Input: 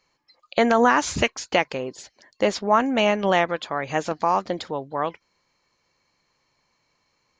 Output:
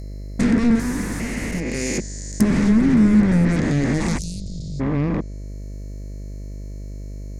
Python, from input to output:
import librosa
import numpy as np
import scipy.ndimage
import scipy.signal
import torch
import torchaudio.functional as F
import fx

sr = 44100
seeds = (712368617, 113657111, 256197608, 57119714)

p1 = fx.spec_steps(x, sr, hold_ms=400)
p2 = fx.tilt_eq(p1, sr, slope=4.0, at=(0.75, 1.98))
p3 = fx.fold_sine(p2, sr, drive_db=19, ceiling_db=-10.0)
p4 = p2 + (p3 * 10.0 ** (-4.0 / 20.0))
p5 = fx.curve_eq(p4, sr, hz=(120.0, 220.0, 690.0, 1300.0, 2000.0, 3000.0, 9300.0), db=(0, 9, -17, -16, -7, -19, 13))
p6 = fx.env_lowpass_down(p5, sr, base_hz=1900.0, full_db=-11.0)
p7 = fx.cheby2_bandstop(p6, sr, low_hz=350.0, high_hz=1500.0, order=4, stop_db=60, at=(4.17, 4.79), fade=0.02)
y = fx.dmg_buzz(p7, sr, base_hz=50.0, harmonics=13, level_db=-32.0, tilt_db=-8, odd_only=False)